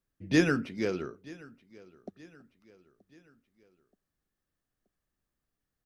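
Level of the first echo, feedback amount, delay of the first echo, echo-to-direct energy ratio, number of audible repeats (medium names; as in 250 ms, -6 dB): -22.0 dB, 47%, 927 ms, -21.0 dB, 2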